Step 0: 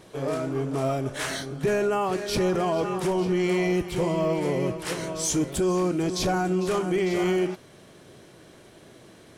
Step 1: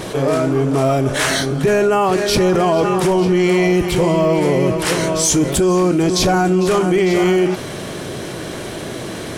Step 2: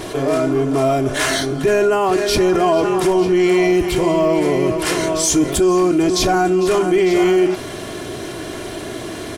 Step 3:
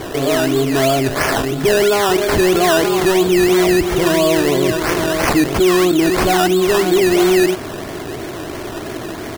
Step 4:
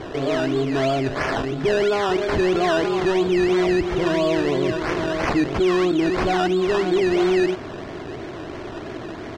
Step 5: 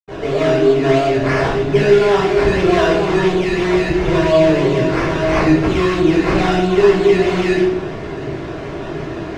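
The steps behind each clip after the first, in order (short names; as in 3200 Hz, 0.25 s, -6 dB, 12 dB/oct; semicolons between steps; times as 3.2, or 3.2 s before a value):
fast leveller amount 50%; gain +8.5 dB
comb 2.9 ms, depth 47%; gain -2 dB
decimation with a swept rate 16×, swing 60% 3 Hz; gain +1.5 dB
air absorption 140 m; gain -5.5 dB
reverb RT60 0.80 s, pre-delay 76 ms; gain -9 dB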